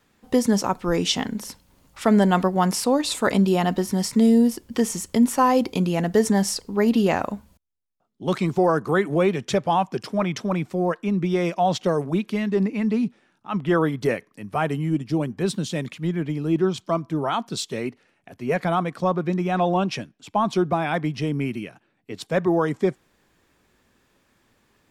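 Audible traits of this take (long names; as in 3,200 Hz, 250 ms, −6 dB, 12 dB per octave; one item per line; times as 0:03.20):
background noise floor −66 dBFS
spectral slope −5.5 dB per octave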